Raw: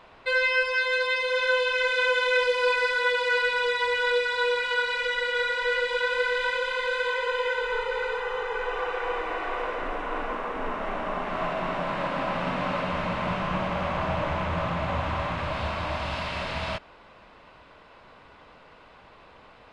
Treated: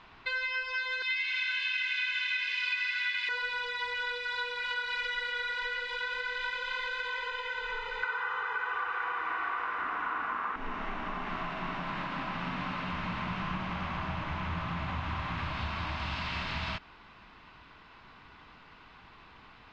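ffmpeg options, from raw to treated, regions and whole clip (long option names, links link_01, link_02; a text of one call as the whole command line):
ffmpeg -i in.wav -filter_complex "[0:a]asettb=1/sr,asplit=3[link_01][link_02][link_03];[link_01]atrim=end=1.024[link_04];[link_02]atrim=start=1.02:end=3.29,asetpts=PTS-STARTPTS,afade=type=in:duration=0.004:curve=qsin,afade=type=out:start_time=2.266:duration=0.004:curve=qsin,highpass=frequency=2200:width_type=q:width=2.4,asplit=5[link_05][link_06][link_07][link_08][link_09];[link_06]adelay=82,afreqshift=100,volume=-8dB[link_10];[link_07]adelay=164,afreqshift=200,volume=-16.6dB[link_11];[link_08]adelay=246,afreqshift=300,volume=-25.3dB[link_12];[link_09]adelay=328,afreqshift=400,volume=-33.9dB[link_13];[link_05][link_10][link_11][link_12][link_13]amix=inputs=5:normalize=0,atrim=end_sample=100107[link_14];[link_03]atrim=start=3.286[link_15];[link_04][link_14]acrossfade=duration=0.004:curve1=hsin:curve2=qsin[link_16];[link_16][link_15]acrossfade=duration=0.004:curve1=qsin:curve2=hsin,asettb=1/sr,asplit=3[link_17][link_18][link_19];[link_17]atrim=end=8.034[link_20];[link_18]atrim=start=8.03:end=10.56,asetpts=PTS-STARTPTS,afade=type=in:duration=0.004:curve=qsin,afade=type=out:start_time=2.526:duration=0.004:curve=qsin,highpass=frequency=53:width=0.5412,highpass=frequency=53:width=1.3066,equalizer=frequency=1300:width_type=o:width=1.3:gain=13.5[link_21];[link_19]atrim=start=10.556[link_22];[link_20][link_21]acrossfade=duration=0.004:curve1=hsin:curve2=qsin[link_23];[link_23][link_22]acrossfade=duration=0.004:curve1=qsin:curve2=hsin,lowpass=frequency=6200:width=0.5412,lowpass=frequency=6200:width=1.3066,acompressor=threshold=-29dB:ratio=6,equalizer=frequency=550:width=2:gain=-15" out.wav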